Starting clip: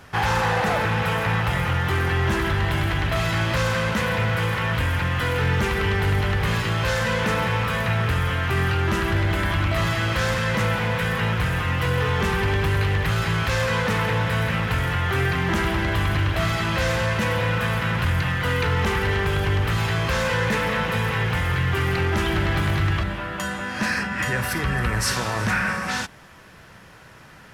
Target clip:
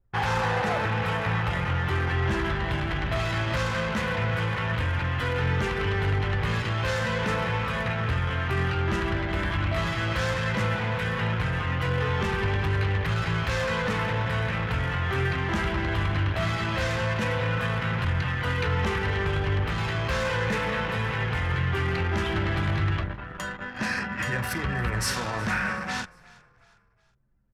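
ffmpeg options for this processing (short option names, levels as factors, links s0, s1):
-filter_complex "[0:a]flanger=delay=7.4:depth=8.2:regen=-59:speed=0.17:shape=sinusoidal,anlmdn=15.8,asplit=2[s0][s1];[s1]asplit=3[s2][s3][s4];[s2]adelay=365,afreqshift=-32,volume=0.0708[s5];[s3]adelay=730,afreqshift=-64,volume=0.0305[s6];[s4]adelay=1095,afreqshift=-96,volume=0.013[s7];[s5][s6][s7]amix=inputs=3:normalize=0[s8];[s0][s8]amix=inputs=2:normalize=0"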